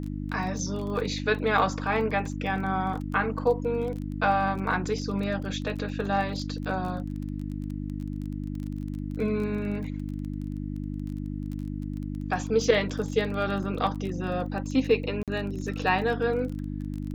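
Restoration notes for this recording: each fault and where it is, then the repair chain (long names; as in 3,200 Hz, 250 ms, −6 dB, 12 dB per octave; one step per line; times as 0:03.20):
surface crackle 22 per second −34 dBFS
mains hum 50 Hz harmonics 6 −33 dBFS
0:15.23–0:15.28: drop-out 47 ms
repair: click removal
hum removal 50 Hz, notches 6
repair the gap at 0:15.23, 47 ms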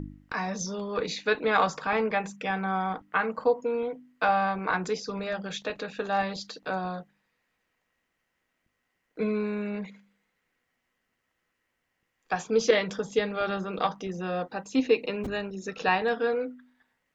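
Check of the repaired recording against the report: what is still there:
none of them is left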